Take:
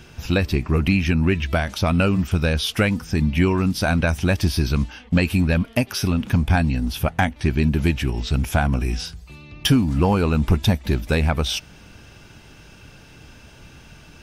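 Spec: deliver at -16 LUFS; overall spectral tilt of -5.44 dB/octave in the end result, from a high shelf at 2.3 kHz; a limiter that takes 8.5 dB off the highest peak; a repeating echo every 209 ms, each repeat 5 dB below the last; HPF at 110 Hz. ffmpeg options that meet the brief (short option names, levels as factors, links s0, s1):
-af "highpass=110,highshelf=f=2300:g=-3.5,alimiter=limit=0.211:level=0:latency=1,aecho=1:1:209|418|627|836|1045|1254|1463:0.562|0.315|0.176|0.0988|0.0553|0.031|0.0173,volume=2.51"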